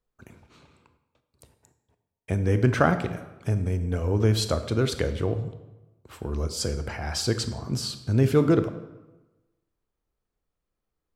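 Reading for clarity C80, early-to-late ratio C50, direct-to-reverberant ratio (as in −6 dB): 13.5 dB, 11.0 dB, 9.5 dB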